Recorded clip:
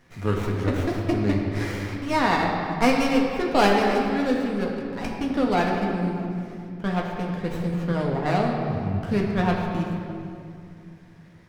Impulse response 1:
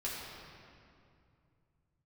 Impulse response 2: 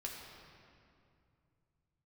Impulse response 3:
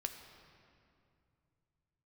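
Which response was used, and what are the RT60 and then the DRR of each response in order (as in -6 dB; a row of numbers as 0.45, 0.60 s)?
2; 2.5, 2.5, 2.5 s; -7.0, -1.5, 5.5 dB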